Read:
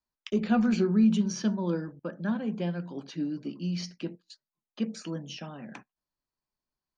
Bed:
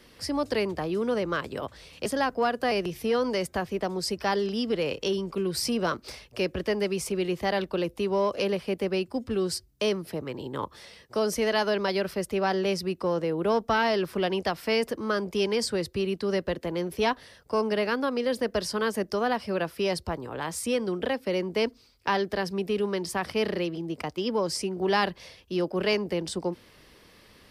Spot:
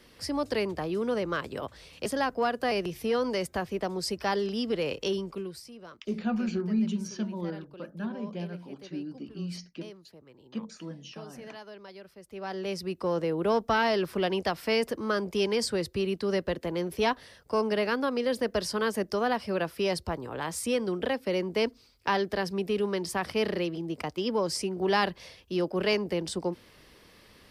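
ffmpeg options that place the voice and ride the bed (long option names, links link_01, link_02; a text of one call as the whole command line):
ffmpeg -i stem1.wav -i stem2.wav -filter_complex "[0:a]adelay=5750,volume=-5dB[link_01];[1:a]volume=17dB,afade=type=out:start_time=5.16:duration=0.47:silence=0.125893,afade=type=in:start_time=12.23:duration=0.96:silence=0.112202[link_02];[link_01][link_02]amix=inputs=2:normalize=0" out.wav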